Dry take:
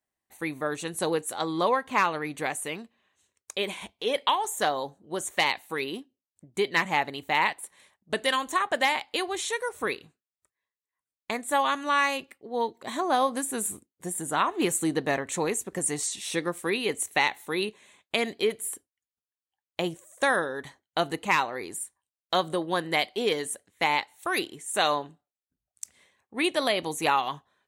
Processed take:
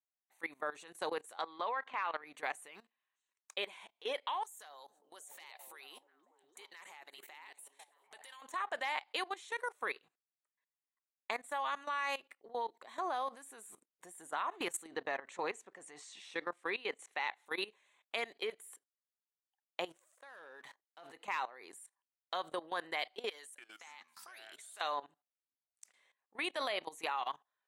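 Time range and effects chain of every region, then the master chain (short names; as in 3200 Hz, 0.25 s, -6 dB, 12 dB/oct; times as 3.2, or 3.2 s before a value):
1.42–2.21 BPF 150–3500 Hz + tilt shelf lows -3.5 dB, about 680 Hz
2.71–3.55 block floating point 7-bit + bell 540 Hz -6.5 dB 0.85 oct
4.43–8.42 compressor 8:1, threshold -38 dBFS + RIAA curve recording + delay with a stepping band-pass 0.294 s, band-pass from 230 Hz, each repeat 0.7 oct, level -2 dB
14.87–17.46 HPF 50 Hz + air absorption 74 m
19.89–21.13 auto swell 0.148 s + sample leveller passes 2 + compressor 5:1, threshold -37 dBFS
23.29–24.81 tilt +3 dB/oct + compressor, threshold -36 dBFS + echoes that change speed 0.292 s, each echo -5 st, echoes 3, each echo -6 dB
whole clip: HPF 910 Hz 12 dB/oct; tilt -3 dB/oct; level quantiser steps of 18 dB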